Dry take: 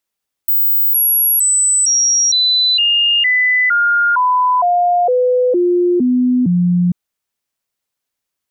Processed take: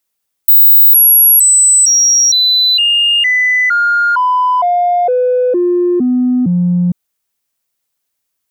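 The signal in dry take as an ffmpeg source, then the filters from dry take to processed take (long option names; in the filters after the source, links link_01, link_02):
-f lavfi -i "aevalsrc='0.316*clip(min(mod(t,0.46),0.46-mod(t,0.46))/0.005,0,1)*sin(2*PI*16000*pow(2,-floor(t/0.46)/2)*mod(t,0.46))':duration=6.44:sample_rate=44100"
-filter_complex "[0:a]highshelf=frequency=7200:gain=7.5,asplit=2[link_01][link_02];[link_02]asoftclip=type=tanh:threshold=-17dB,volume=-9.5dB[link_03];[link_01][link_03]amix=inputs=2:normalize=0"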